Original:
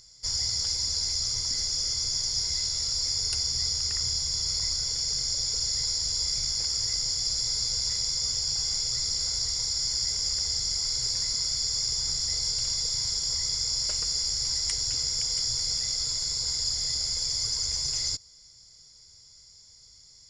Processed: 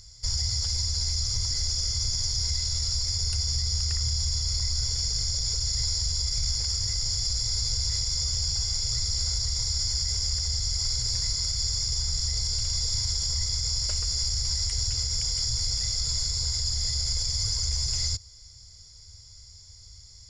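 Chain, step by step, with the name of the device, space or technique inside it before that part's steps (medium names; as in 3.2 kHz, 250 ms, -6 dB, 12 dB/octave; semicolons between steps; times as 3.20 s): car stereo with a boomy subwoofer (resonant low shelf 130 Hz +12 dB, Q 1.5; peak limiter -20.5 dBFS, peak gain reduction 9 dB); trim +2.5 dB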